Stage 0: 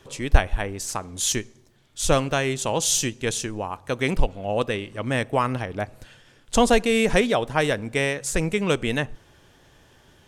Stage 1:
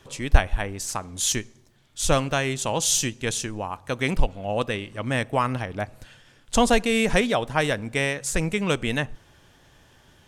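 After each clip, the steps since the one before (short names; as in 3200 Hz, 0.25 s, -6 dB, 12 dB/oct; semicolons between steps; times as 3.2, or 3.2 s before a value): bell 410 Hz -3.5 dB 0.87 oct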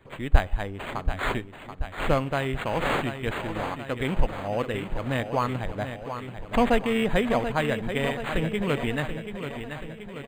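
on a send: feedback echo 0.732 s, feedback 59%, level -9 dB; on the sum: decimation joined by straight lines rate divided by 8×; gain -2 dB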